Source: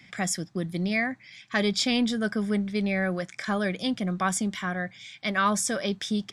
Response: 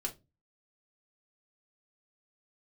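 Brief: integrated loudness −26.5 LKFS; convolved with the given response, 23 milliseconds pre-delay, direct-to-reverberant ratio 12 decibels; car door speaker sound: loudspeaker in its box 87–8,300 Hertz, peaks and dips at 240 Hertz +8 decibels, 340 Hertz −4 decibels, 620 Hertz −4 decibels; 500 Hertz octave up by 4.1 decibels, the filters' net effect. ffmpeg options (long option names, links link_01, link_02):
-filter_complex "[0:a]equalizer=frequency=500:width_type=o:gain=7.5,asplit=2[link_01][link_02];[1:a]atrim=start_sample=2205,adelay=23[link_03];[link_02][link_03]afir=irnorm=-1:irlink=0,volume=-13dB[link_04];[link_01][link_04]amix=inputs=2:normalize=0,highpass=87,equalizer=frequency=240:width_type=q:width=4:gain=8,equalizer=frequency=340:width_type=q:width=4:gain=-4,equalizer=frequency=620:width_type=q:width=4:gain=-4,lowpass=frequency=8300:width=0.5412,lowpass=frequency=8300:width=1.3066,volume=-2dB"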